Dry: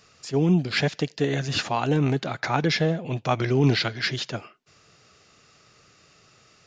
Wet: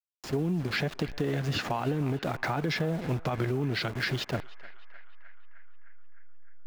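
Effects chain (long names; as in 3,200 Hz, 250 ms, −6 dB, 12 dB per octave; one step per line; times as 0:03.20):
hold until the input has moved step −33.5 dBFS
high-shelf EQ 3,600 Hz −10 dB
reversed playback
upward compression, threshold −34 dBFS
reversed playback
brickwall limiter −19 dBFS, peak gain reduction 10 dB
downward compressor, threshold −28 dBFS, peak gain reduction 6.5 dB
on a send: feedback echo with a band-pass in the loop 305 ms, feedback 72%, band-pass 1,500 Hz, level −16.5 dB
on the sum: level +2.5 dB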